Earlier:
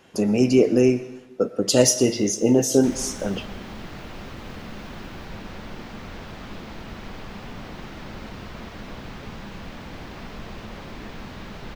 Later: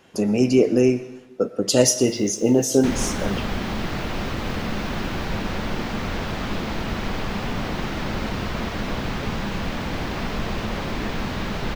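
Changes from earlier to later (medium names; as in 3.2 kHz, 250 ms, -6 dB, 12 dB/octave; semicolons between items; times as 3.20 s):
first sound +8.0 dB; second sound +10.5 dB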